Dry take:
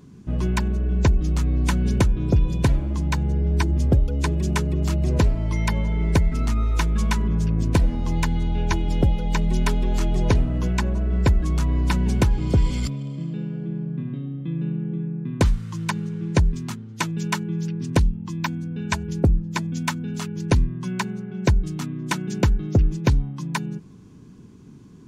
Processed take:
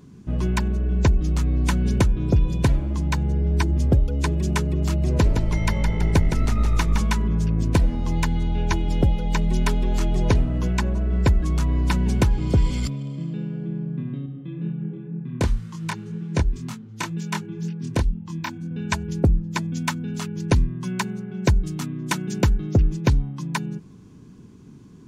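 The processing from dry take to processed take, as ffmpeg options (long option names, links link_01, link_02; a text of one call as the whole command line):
ffmpeg -i in.wav -filter_complex "[0:a]asettb=1/sr,asplit=3[link_01][link_02][link_03];[link_01]atrim=end=5.094[link_04];[link_02]atrim=start=5.09:end=7.02,asetpts=PTS-STARTPTS,afade=type=in:duration=0.004:curve=qsin,afade=type=out:start_time=1.926:duration=0.004:curve=qsin,asplit=9[link_05][link_06][link_07][link_08][link_09][link_10][link_11][link_12][link_13];[link_06]adelay=164,afreqshift=-52,volume=-6dB[link_14];[link_07]adelay=328,afreqshift=-104,volume=-10.6dB[link_15];[link_08]adelay=492,afreqshift=-156,volume=-15.2dB[link_16];[link_09]adelay=656,afreqshift=-208,volume=-19.7dB[link_17];[link_10]adelay=820,afreqshift=-260,volume=-24.3dB[link_18];[link_11]adelay=984,afreqshift=-312,volume=-28.9dB[link_19];[link_12]adelay=1148,afreqshift=-364,volume=-33.5dB[link_20];[link_13]adelay=1312,afreqshift=-416,volume=-38.1dB[link_21];[link_05][link_14][link_15][link_16][link_17][link_18][link_19][link_20][link_21]amix=inputs=9:normalize=0,atrim=end_sample=85113[link_22];[link_03]atrim=start=7.016[link_23];[link_04][link_22]acrossfade=duration=0.004:curve1=hsin:curve2=qsin[link_24];[link_24][link_23]acrossfade=duration=0.004:curve1=qsin:curve2=hsin,asettb=1/sr,asplit=3[link_25][link_26][link_27];[link_25]atrim=end=14.264[link_28];[link_26]atrim=start=14.26:end=18.71,asetpts=PTS-STARTPTS,afade=type=in:duration=0.004:curve=qsin,afade=type=out:start_time=4.446:duration=0.004:curve=qsin,flanger=delay=22.5:depth=5:speed=2[link_29];[link_27]atrim=start=18.706[link_30];[link_28][link_29]acrossfade=duration=0.004:curve1=hsin:curve2=qsin[link_31];[link_31][link_30]acrossfade=duration=0.004:curve1=qsin:curve2=hsin,asettb=1/sr,asplit=3[link_32][link_33][link_34];[link_32]atrim=end=20.574[link_35];[link_33]atrim=start=20.57:end=22.65,asetpts=PTS-STARTPTS,afade=type=in:duration=0.004:curve=qsin,afade=type=out:start_time=2.076:duration=0.004:curve=qsin,highshelf=frequency=7700:gain=5[link_36];[link_34]atrim=start=22.646[link_37];[link_35][link_36]acrossfade=duration=0.004:curve1=hsin:curve2=qsin[link_38];[link_38][link_37]acrossfade=duration=0.004:curve1=qsin:curve2=hsin" out.wav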